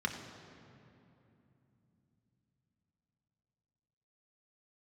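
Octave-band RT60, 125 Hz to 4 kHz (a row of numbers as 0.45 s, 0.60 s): 5.2 s, 4.7 s, 3.1 s, 2.7 s, 2.4 s, 1.8 s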